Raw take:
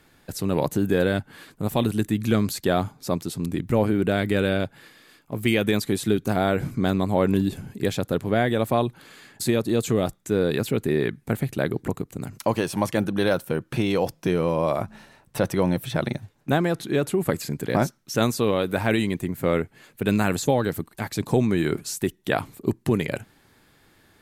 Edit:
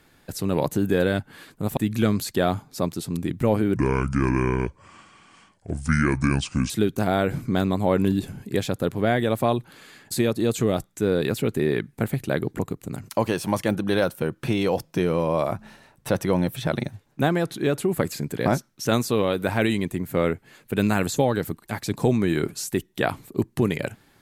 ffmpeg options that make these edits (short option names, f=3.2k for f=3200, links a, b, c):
-filter_complex "[0:a]asplit=4[a][b][c][d];[a]atrim=end=1.772[e];[b]atrim=start=2.058:end=4.054[f];[c]atrim=start=4.05:end=5.99,asetpts=PTS-STARTPTS,asetrate=29106,aresample=44100,atrim=end_sample=129627,asetpts=PTS-STARTPTS[g];[d]atrim=start=5.986[h];[e][f]acrossfade=d=0.004:c1=hsin:c2=hsin[i];[i][g]acrossfade=d=0.004:c1=hsin:c2=hsin[j];[j][h]acrossfade=d=0.004:c1=hsin:c2=hsin"